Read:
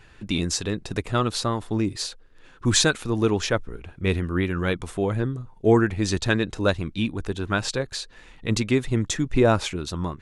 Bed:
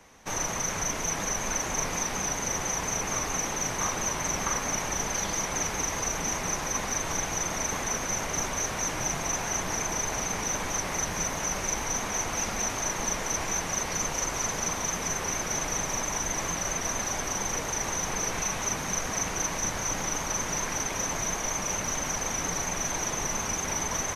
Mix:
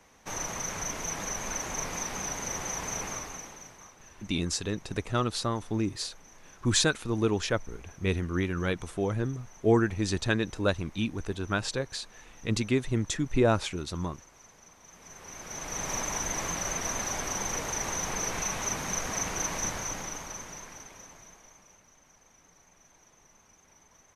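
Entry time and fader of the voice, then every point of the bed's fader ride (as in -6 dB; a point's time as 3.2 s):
4.00 s, -5.0 dB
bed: 3.04 s -4.5 dB
3.98 s -25.5 dB
14.79 s -25.5 dB
15.91 s -2 dB
19.66 s -2 dB
21.89 s -30 dB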